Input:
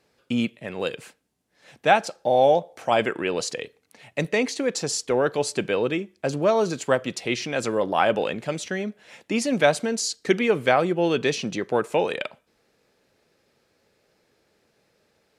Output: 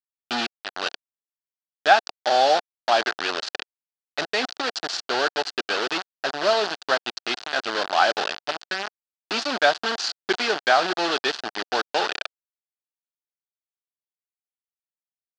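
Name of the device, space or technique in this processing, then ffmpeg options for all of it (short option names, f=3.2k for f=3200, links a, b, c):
hand-held game console: -af "acrusher=bits=3:mix=0:aa=0.000001,highpass=490,equalizer=f=510:t=q:w=4:g=-10,equalizer=f=730:t=q:w=4:g=3,equalizer=f=1k:t=q:w=4:g=-4,equalizer=f=1.5k:t=q:w=4:g=4,equalizer=f=2.2k:t=q:w=4:g=-8,equalizer=f=4.5k:t=q:w=4:g=5,lowpass=f=5k:w=0.5412,lowpass=f=5k:w=1.3066,volume=2.5dB"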